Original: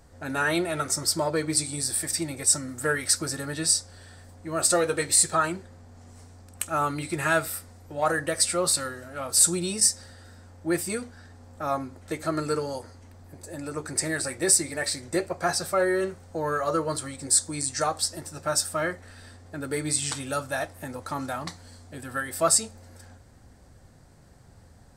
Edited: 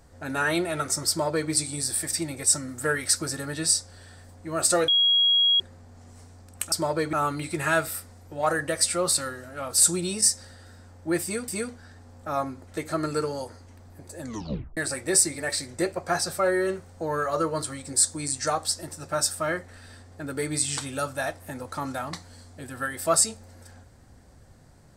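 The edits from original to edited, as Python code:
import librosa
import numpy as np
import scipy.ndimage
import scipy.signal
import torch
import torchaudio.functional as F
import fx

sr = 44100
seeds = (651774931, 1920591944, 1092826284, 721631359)

y = fx.edit(x, sr, fx.duplicate(start_s=1.09, length_s=0.41, to_s=6.72),
    fx.bleep(start_s=4.88, length_s=0.72, hz=3300.0, db=-17.0),
    fx.repeat(start_s=10.82, length_s=0.25, count=2),
    fx.tape_stop(start_s=13.55, length_s=0.56), tone=tone)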